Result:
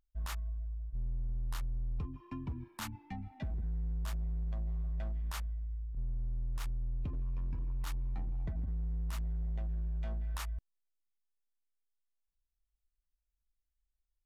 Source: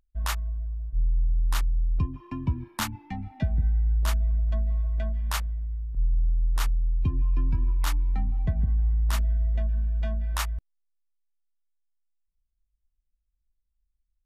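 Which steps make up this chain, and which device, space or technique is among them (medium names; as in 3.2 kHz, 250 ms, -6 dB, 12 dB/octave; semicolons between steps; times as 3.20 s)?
limiter into clipper (peak limiter -21 dBFS, peak gain reduction 6 dB; hard clipper -25 dBFS, distortion -15 dB); trim -8 dB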